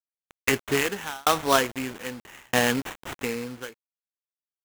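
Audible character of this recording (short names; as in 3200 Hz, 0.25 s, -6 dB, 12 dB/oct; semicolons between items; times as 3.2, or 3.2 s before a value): a quantiser's noise floor 6-bit, dither none; tremolo saw down 0.79 Hz, depth 100%; aliases and images of a low sample rate 4700 Hz, jitter 20%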